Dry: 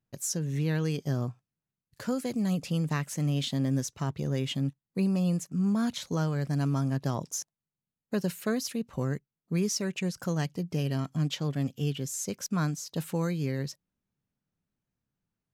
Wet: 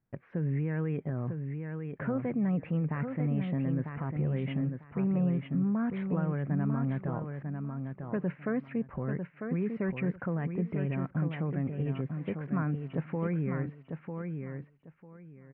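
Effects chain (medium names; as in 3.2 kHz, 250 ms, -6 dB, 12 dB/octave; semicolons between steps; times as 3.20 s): steep low-pass 2.3 kHz 48 dB/octave; peak limiter -27 dBFS, peak gain reduction 10 dB; feedback delay 948 ms, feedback 21%, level -6 dB; trim +3 dB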